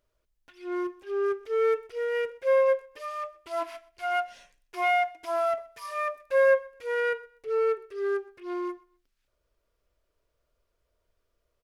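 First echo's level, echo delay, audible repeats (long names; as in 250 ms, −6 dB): −23.0 dB, 126 ms, 2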